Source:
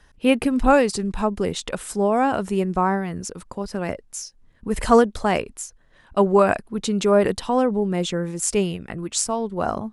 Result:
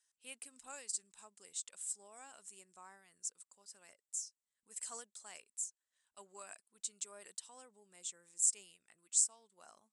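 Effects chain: band-pass 7900 Hz, Q 4.7; gain -2.5 dB

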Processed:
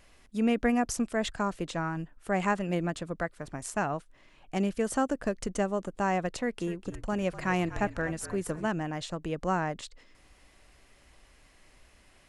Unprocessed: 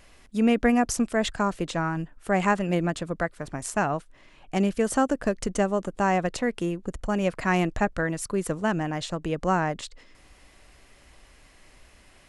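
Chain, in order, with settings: 6.34–8.67 frequency-shifting echo 0.248 s, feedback 52%, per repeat -53 Hz, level -14 dB; gain -5 dB

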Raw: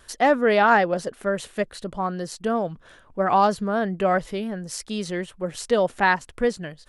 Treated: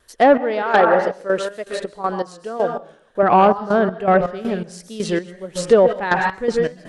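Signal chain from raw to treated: plate-style reverb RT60 0.68 s, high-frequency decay 0.85×, pre-delay 0.115 s, DRR 6.5 dB; step gate ".x..xx.x.x.x." 81 bpm -12 dB; treble ducked by the level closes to 2000 Hz, closed at -15.5 dBFS; added harmonics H 5 -11 dB, 7 -22 dB, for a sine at -4 dBFS; bell 430 Hz +4.5 dB 1.1 oct; wow and flutter 56 cents; 0.62–3.23 tone controls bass -10 dB, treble 0 dB

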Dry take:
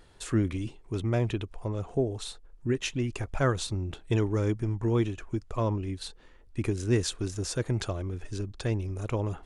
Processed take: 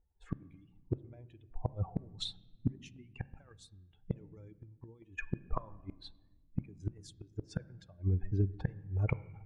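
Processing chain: per-bin expansion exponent 2; low-pass opened by the level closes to 480 Hz, open at -29 dBFS; low shelf 140 Hz -5 dB; negative-ratio compressor -33 dBFS, ratio -0.5; flipped gate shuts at -34 dBFS, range -35 dB; on a send: reverb RT60 1.3 s, pre-delay 8 ms, DRR 16.5 dB; on the sum: gain +14.5 dB

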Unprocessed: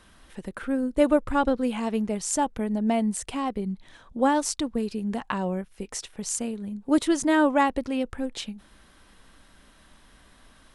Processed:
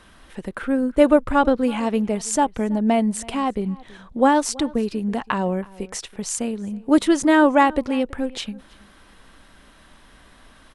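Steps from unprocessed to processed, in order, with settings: tone controls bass -2 dB, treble -4 dB; outdoor echo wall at 56 m, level -22 dB; gain +6 dB

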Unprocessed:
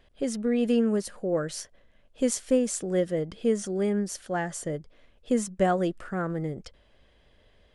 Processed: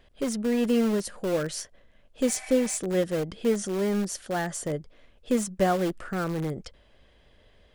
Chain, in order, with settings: spectral repair 2.28–2.74, 610–2700 Hz before; in parallel at -11 dB: wrapped overs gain 25 dB

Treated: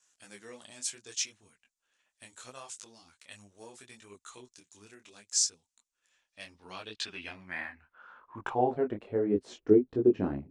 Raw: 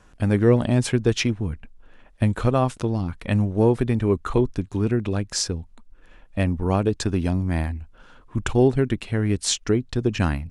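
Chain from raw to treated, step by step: vibrato 2.5 Hz 16 cents; band-pass sweep 7100 Hz -> 380 Hz, 6.09–9.39; detuned doubles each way 25 cents; gain +5.5 dB

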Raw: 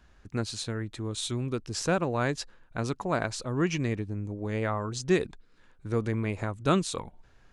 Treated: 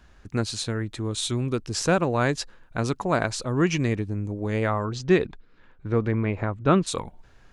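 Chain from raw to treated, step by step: 4.84–6.86 LPF 4300 Hz -> 2100 Hz 12 dB/oct; gain +5 dB

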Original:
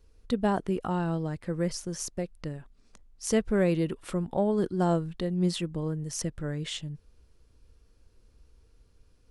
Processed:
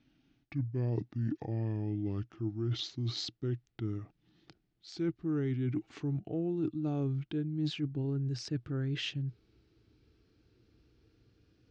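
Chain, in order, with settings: speed glide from 57% -> 102%; speaker cabinet 100–5000 Hz, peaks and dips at 120 Hz +9 dB, 320 Hz +10 dB, 540 Hz -7 dB, 1000 Hz -10 dB; reverse; compressor 6:1, threshold -31 dBFS, peak gain reduction 15.5 dB; reverse

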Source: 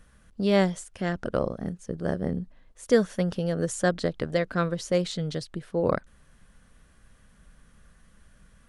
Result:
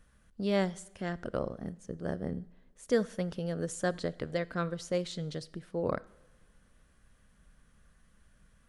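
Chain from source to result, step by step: two-slope reverb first 0.78 s, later 2.6 s, from -18 dB, DRR 18.5 dB; gain -7 dB

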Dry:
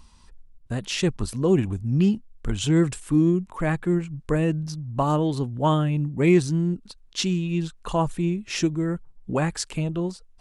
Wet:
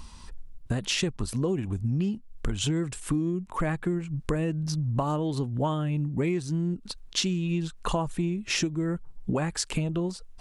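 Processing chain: compressor 10:1, threshold -32 dBFS, peak gain reduction 19.5 dB; gain +7.5 dB

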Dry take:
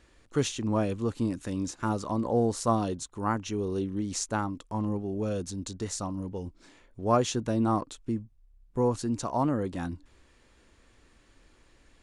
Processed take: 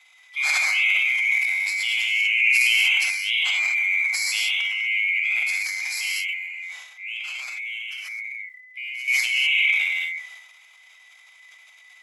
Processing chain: band-swap scrambler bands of 2000 Hz; HPF 790 Hz 24 dB/oct; non-linear reverb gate 0.27 s flat, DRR -3.5 dB; 6.27–9.08 compressor 8:1, threshold -33 dBFS, peak gain reduction 16 dB; transient shaper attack -5 dB, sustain +9 dB; gain +2.5 dB

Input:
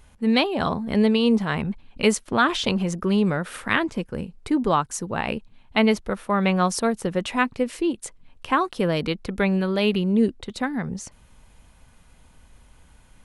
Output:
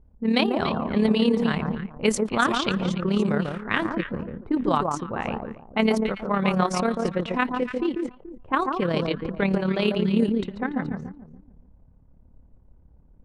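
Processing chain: echo with dull and thin repeats by turns 0.144 s, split 1300 Hz, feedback 50%, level -3.5 dB; low-pass opened by the level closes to 400 Hz, open at -15 dBFS; AM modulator 35 Hz, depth 40%

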